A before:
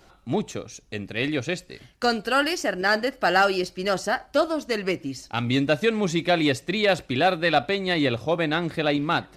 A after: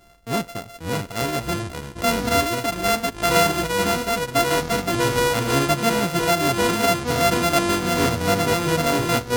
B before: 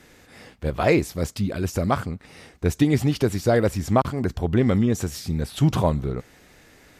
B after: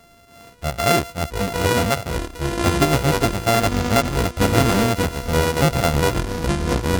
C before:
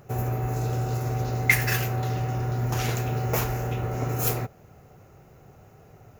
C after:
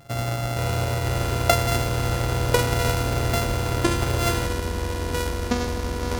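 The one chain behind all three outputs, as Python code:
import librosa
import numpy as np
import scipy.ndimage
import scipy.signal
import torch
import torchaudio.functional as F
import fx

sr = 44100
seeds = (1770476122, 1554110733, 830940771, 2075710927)

y = np.r_[np.sort(x[:len(x) // 64 * 64].reshape(-1, 64), axis=1).ravel(), x[len(x) // 64 * 64:]]
y = fx.echo_pitch(y, sr, ms=427, semitones=-6, count=3, db_per_echo=-3.0)
y = F.gain(torch.from_numpy(y), 1.0).numpy()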